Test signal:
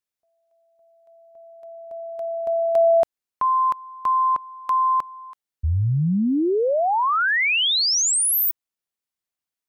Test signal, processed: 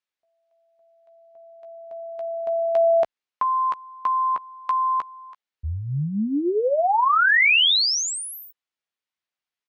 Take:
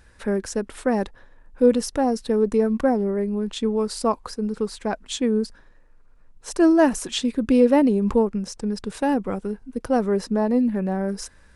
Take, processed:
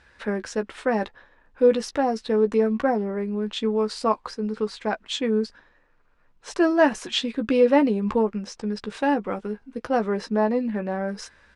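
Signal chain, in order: low-pass 3.2 kHz 12 dB/octave; tilt EQ +2.5 dB/octave; doubling 14 ms -8.5 dB; trim +1 dB

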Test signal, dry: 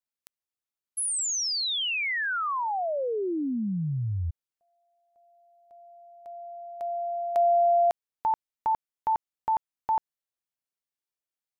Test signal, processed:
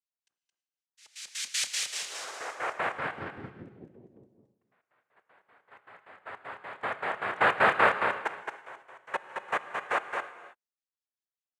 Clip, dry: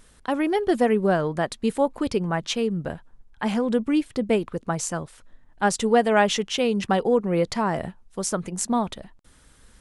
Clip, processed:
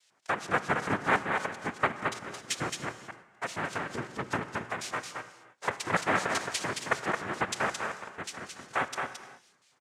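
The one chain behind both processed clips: hum notches 60/120/180/240/300/360/420/480/540/600 Hz; LFO band-pass square 5.2 Hz 740–4200 Hz; noise-vocoded speech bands 3; delay 220 ms -5 dB; gated-style reverb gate 350 ms flat, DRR 11.5 dB

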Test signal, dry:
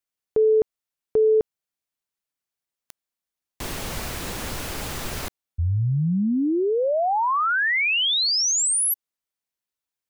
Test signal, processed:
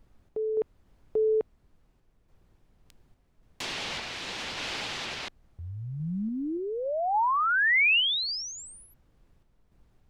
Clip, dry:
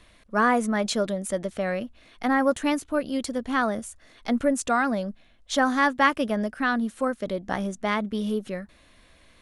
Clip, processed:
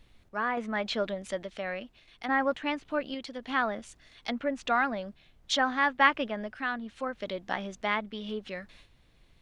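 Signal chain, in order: low-pass that closes with the level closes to 2.4 kHz, closed at -22.5 dBFS; frequency weighting D; gate with hold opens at -37 dBFS, hold 142 ms, range -13 dB; peaking EQ 850 Hz +5.5 dB 0.82 oct; added noise brown -52 dBFS; random-step tremolo 3.5 Hz; trim -6 dB

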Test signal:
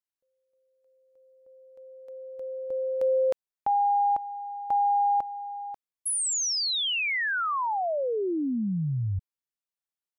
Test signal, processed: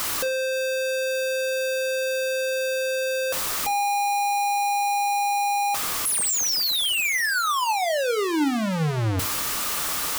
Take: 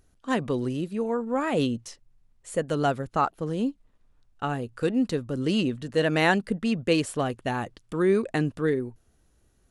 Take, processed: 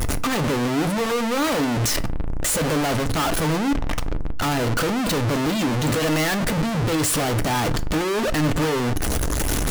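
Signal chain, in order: one-bit comparator; spectral gate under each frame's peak -30 dB strong; peaking EQ 1.2 kHz +5 dB 0.27 oct; de-hum 209.4 Hz, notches 3; waveshaping leveller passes 5; FDN reverb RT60 0.39 s, low-frequency decay 1.1×, high-frequency decay 0.7×, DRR 11 dB

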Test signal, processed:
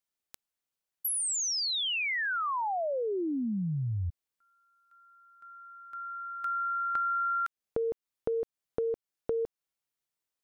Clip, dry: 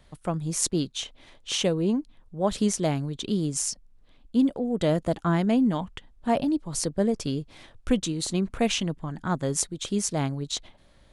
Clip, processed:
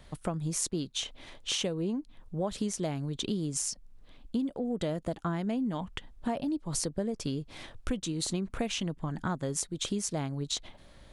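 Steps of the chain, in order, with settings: compression 6:1, threshold -33 dBFS; trim +3.5 dB

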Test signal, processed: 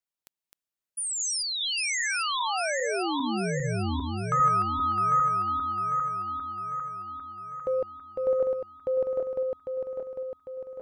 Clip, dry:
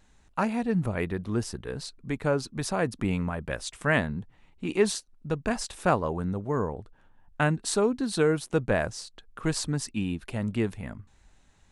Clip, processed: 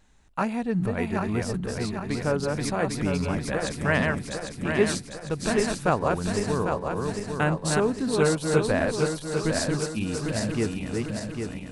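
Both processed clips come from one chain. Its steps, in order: backward echo that repeats 400 ms, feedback 71%, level -3 dB

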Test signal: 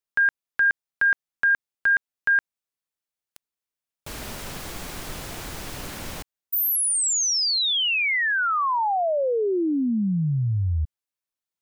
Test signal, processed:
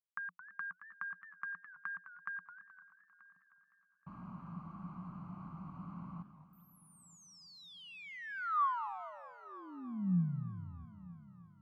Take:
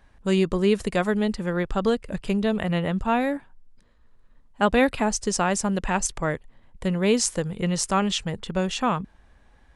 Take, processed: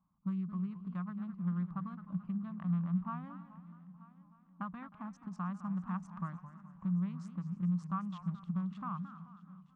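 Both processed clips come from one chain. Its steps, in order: local Wiener filter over 25 samples; gate -46 dBFS, range -6 dB; peaking EQ 310 Hz +3.5 dB 1.6 oct; compression 5:1, threshold -30 dBFS; two resonant band-passes 450 Hz, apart 2.7 oct; multi-head delay 311 ms, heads first and third, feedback 47%, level -21 dB; modulated delay 215 ms, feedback 48%, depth 196 cents, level -13 dB; trim +2 dB

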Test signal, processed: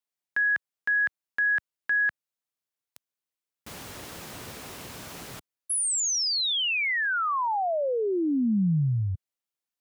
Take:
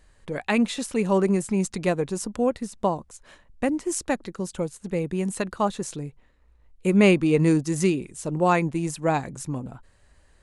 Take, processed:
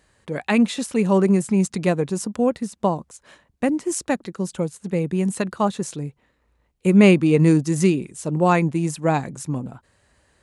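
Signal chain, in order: high-pass 88 Hz 12 dB/octave; dynamic bell 170 Hz, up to +4 dB, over -35 dBFS, Q 0.99; trim +2 dB

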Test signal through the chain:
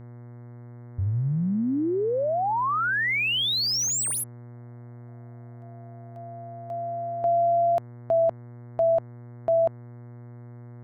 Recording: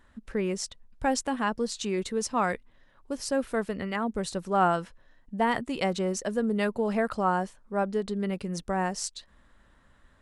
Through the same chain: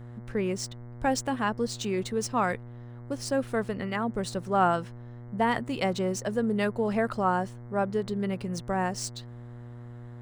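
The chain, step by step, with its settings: median filter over 3 samples; mains buzz 120 Hz, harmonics 18, -43 dBFS -9 dB/octave

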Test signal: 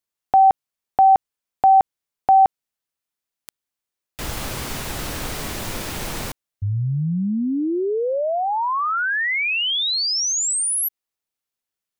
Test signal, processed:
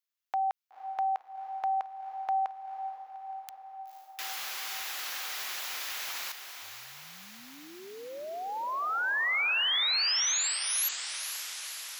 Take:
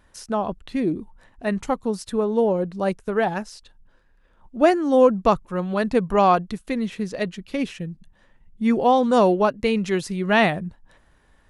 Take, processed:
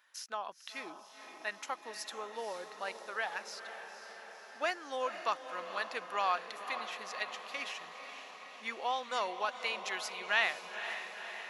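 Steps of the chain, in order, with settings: high-pass 1.4 kHz 12 dB/octave; peaking EQ 8.8 kHz -12.5 dB 0.28 oct; in parallel at -2.5 dB: compression, threshold -34 dBFS; on the sum: echo that smears into a reverb 501 ms, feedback 69%, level -9.5 dB; trim -7.5 dB

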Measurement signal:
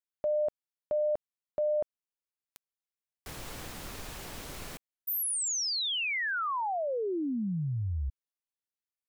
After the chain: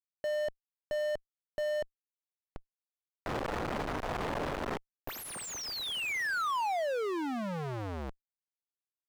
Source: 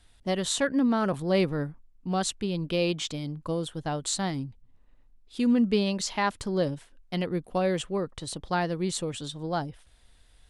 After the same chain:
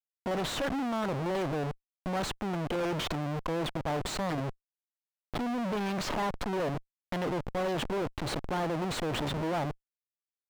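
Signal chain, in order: Schmitt trigger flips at -41 dBFS; overdrive pedal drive 18 dB, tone 1.6 kHz, clips at -24.5 dBFS

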